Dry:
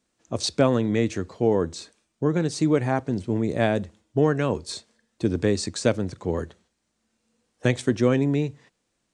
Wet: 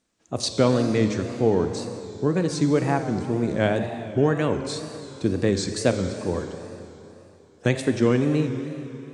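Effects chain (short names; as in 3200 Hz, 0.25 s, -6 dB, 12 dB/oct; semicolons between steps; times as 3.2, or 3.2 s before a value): Schroeder reverb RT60 3.1 s, combs from 31 ms, DRR 6.5 dB; wow and flutter 110 cents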